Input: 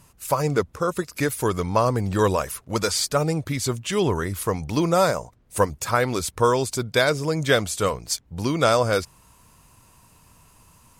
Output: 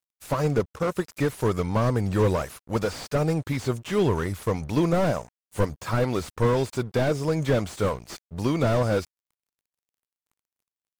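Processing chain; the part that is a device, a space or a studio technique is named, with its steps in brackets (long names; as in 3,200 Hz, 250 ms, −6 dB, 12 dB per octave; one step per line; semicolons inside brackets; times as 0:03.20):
early transistor amplifier (dead-zone distortion −44.5 dBFS; slew-rate limiting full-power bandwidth 63 Hz)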